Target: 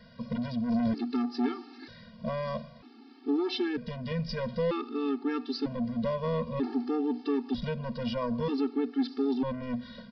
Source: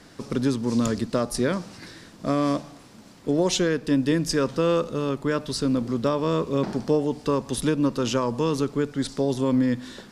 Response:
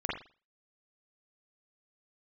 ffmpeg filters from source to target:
-af "equalizer=f=240:t=o:w=0.24:g=13,aresample=11025,asoftclip=type=tanh:threshold=-16.5dB,aresample=44100,afftfilt=real='re*gt(sin(2*PI*0.53*pts/sr)*(1-2*mod(floor(b*sr/1024/230),2)),0)':imag='im*gt(sin(2*PI*0.53*pts/sr)*(1-2*mod(floor(b*sr/1024/230),2)),0)':win_size=1024:overlap=0.75,volume=-3dB"

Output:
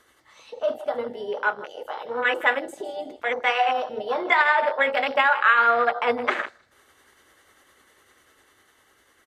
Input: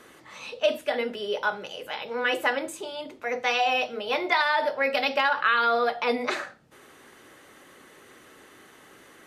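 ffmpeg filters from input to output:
-filter_complex "[0:a]tremolo=f=10:d=0.34,asplit=2[a][b];[b]acompressor=threshold=-39dB:ratio=6,volume=3dB[c];[a][c]amix=inputs=2:normalize=0,bandreject=f=2.5k:w=8.2,asplit=2[d][e];[e]aecho=0:1:157|314|471:0.2|0.0619|0.0192[f];[d][f]amix=inputs=2:normalize=0,afwtdn=0.0355,tiltshelf=f=650:g=-4,dynaudnorm=f=360:g=11:m=3dB,lowshelf=f=110:t=q:w=1.5:g=9"

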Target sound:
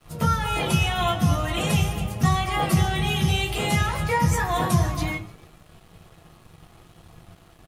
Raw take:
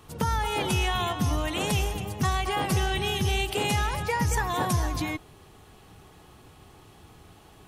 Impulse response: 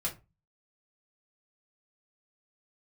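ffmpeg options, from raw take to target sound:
-filter_complex "[0:a]bandreject=f=61.5:t=h:w=4,bandreject=f=123:t=h:w=4,bandreject=f=184.5:t=h:w=4,asplit=5[a][b][c][d][e];[b]adelay=148,afreqshift=74,volume=-22dB[f];[c]adelay=296,afreqshift=148,volume=-27.2dB[g];[d]adelay=444,afreqshift=222,volume=-32.4dB[h];[e]adelay=592,afreqshift=296,volume=-37.6dB[i];[a][f][g][h][i]amix=inputs=5:normalize=0[j];[1:a]atrim=start_sample=2205[k];[j][k]afir=irnorm=-1:irlink=0,aeval=exprs='sgn(val(0))*max(abs(val(0))-0.00266,0)':c=same"

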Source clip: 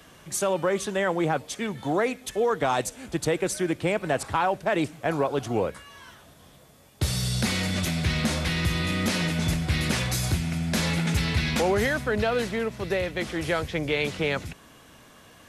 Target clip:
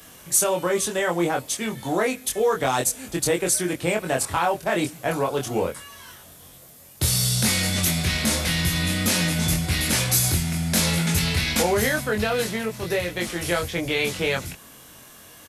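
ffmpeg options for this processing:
-filter_complex "[0:a]aemphasis=mode=production:type=50fm,asplit=2[a][b];[b]adelay=23,volume=-3dB[c];[a][c]amix=inputs=2:normalize=0"

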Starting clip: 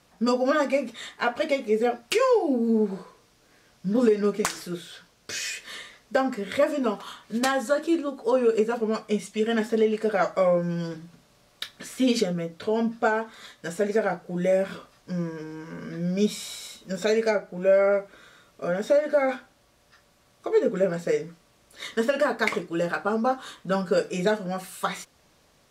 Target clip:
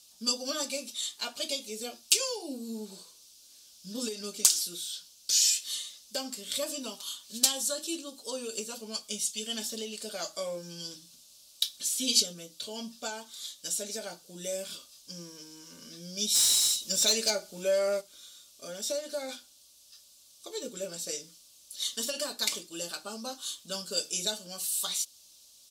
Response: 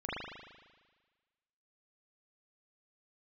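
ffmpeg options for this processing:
-filter_complex "[0:a]aecho=1:1:3.4:0.32,aexciter=amount=15.2:drive=5.8:freq=3k,asplit=3[a][b][c];[a]afade=t=out:st=16.34:d=0.02[d];[b]acontrast=89,afade=t=in:st=16.34:d=0.02,afade=t=out:st=18:d=0.02[e];[c]afade=t=in:st=18:d=0.02[f];[d][e][f]amix=inputs=3:normalize=0,volume=-16dB"

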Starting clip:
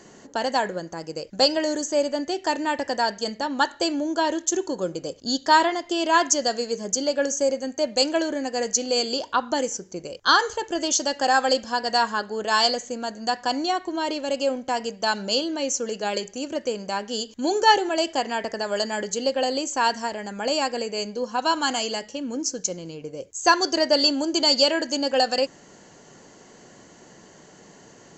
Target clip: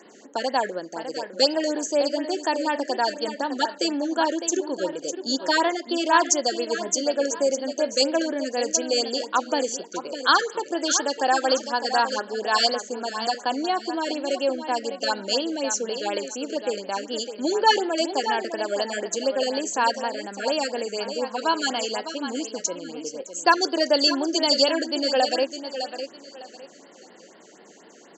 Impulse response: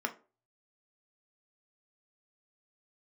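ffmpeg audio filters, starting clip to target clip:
-filter_complex "[0:a]highpass=f=230:w=0.5412,highpass=f=230:w=1.3066,asplit=2[a][b];[b]aecho=0:1:606|1212|1818:0.335|0.0938|0.0263[c];[a][c]amix=inputs=2:normalize=0,afftfilt=real='re*(1-between(b*sr/1024,870*pow(7400/870,0.5+0.5*sin(2*PI*4.1*pts/sr))/1.41,870*pow(7400/870,0.5+0.5*sin(2*PI*4.1*pts/sr))*1.41))':imag='im*(1-between(b*sr/1024,870*pow(7400/870,0.5+0.5*sin(2*PI*4.1*pts/sr))/1.41,870*pow(7400/870,0.5+0.5*sin(2*PI*4.1*pts/sr))*1.41))':win_size=1024:overlap=0.75"

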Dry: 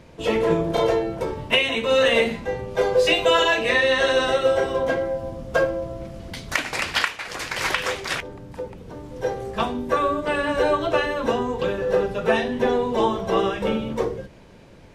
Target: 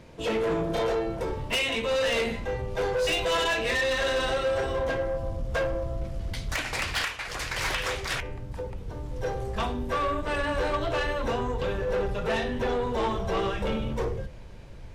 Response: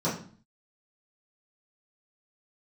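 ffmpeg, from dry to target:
-af "asubboost=boost=4.5:cutoff=100,asoftclip=type=tanh:threshold=-20.5dB,bandreject=f=85.69:t=h:w=4,bandreject=f=171.38:t=h:w=4,bandreject=f=257.07:t=h:w=4,bandreject=f=342.76:t=h:w=4,bandreject=f=428.45:t=h:w=4,bandreject=f=514.14:t=h:w=4,bandreject=f=599.83:t=h:w=4,bandreject=f=685.52:t=h:w=4,bandreject=f=771.21:t=h:w=4,bandreject=f=856.9:t=h:w=4,bandreject=f=942.59:t=h:w=4,bandreject=f=1.02828k:t=h:w=4,bandreject=f=1.11397k:t=h:w=4,bandreject=f=1.19966k:t=h:w=4,bandreject=f=1.28535k:t=h:w=4,bandreject=f=1.37104k:t=h:w=4,bandreject=f=1.45673k:t=h:w=4,bandreject=f=1.54242k:t=h:w=4,bandreject=f=1.62811k:t=h:w=4,bandreject=f=1.7138k:t=h:w=4,bandreject=f=1.79949k:t=h:w=4,bandreject=f=1.88518k:t=h:w=4,bandreject=f=1.97087k:t=h:w=4,bandreject=f=2.05656k:t=h:w=4,bandreject=f=2.14225k:t=h:w=4,bandreject=f=2.22794k:t=h:w=4,bandreject=f=2.31363k:t=h:w=4,bandreject=f=2.39932k:t=h:w=4,bandreject=f=2.48501k:t=h:w=4,bandreject=f=2.5707k:t=h:w=4,bandreject=f=2.65639k:t=h:w=4,bandreject=f=2.74208k:t=h:w=4,bandreject=f=2.82777k:t=h:w=4,bandreject=f=2.91346k:t=h:w=4,bandreject=f=2.99915k:t=h:w=4,bandreject=f=3.08484k:t=h:w=4,bandreject=f=3.17053k:t=h:w=4,bandreject=f=3.25622k:t=h:w=4,bandreject=f=3.34191k:t=h:w=4,volume=-1.5dB"

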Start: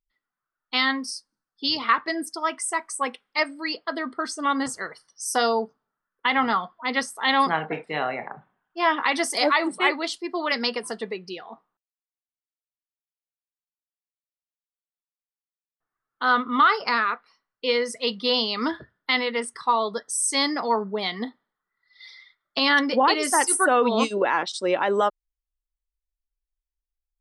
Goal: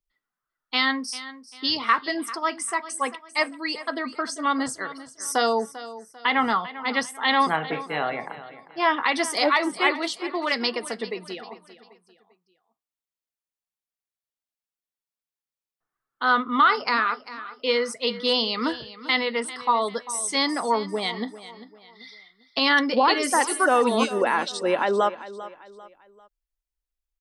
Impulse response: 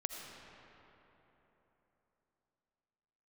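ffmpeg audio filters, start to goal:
-filter_complex "[0:a]acrossover=split=120|5600[a][b][c];[c]alimiter=limit=-20.5dB:level=0:latency=1:release=433[d];[a][b][d]amix=inputs=3:normalize=0,aecho=1:1:395|790|1185:0.168|0.0621|0.023"

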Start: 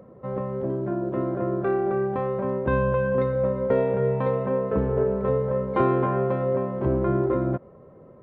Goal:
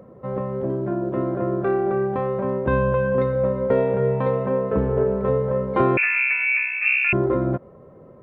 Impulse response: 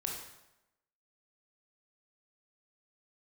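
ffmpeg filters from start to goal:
-filter_complex "[0:a]asettb=1/sr,asplit=3[a][b][c];[a]atrim=end=5.974[d];[b]atrim=start=5.97:end=7.13,asetpts=PTS-STARTPTS,afade=t=in:d=0.004:c=qsin,afade=t=out:st=1.156:d=0.004:c=qsin,lowpass=f=2.4k:t=q:w=0.5098,lowpass=f=2.4k:t=q:w=0.6013,lowpass=f=2.4k:t=q:w=0.9,lowpass=f=2.4k:t=q:w=2.563,afreqshift=-2800[e];[c]atrim=start=7.126[f];[d][e]acrossfade=d=0.004:c1=hsin:c2=qsin[g];[g][f]acrossfade=d=0.004:c1=qsin:c2=hsin,volume=2.5dB"

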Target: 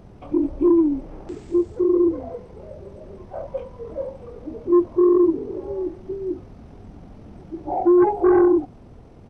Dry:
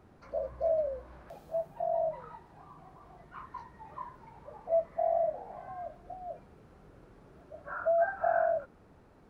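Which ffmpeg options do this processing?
-af "aeval=exprs='0.133*sin(PI/2*1.58*val(0)/0.133)':c=same,asetrate=23361,aresample=44100,atempo=1.88775,volume=7dB"

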